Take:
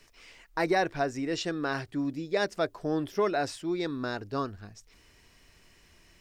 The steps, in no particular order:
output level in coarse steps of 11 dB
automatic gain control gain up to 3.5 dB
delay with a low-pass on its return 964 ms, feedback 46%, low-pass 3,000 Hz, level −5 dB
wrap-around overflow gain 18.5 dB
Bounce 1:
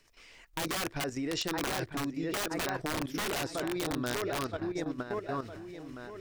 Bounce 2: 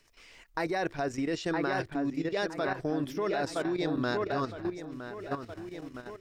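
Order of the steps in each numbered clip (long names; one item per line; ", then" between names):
automatic gain control, then delay with a low-pass on its return, then wrap-around overflow, then output level in coarse steps
delay with a low-pass on its return, then output level in coarse steps, then wrap-around overflow, then automatic gain control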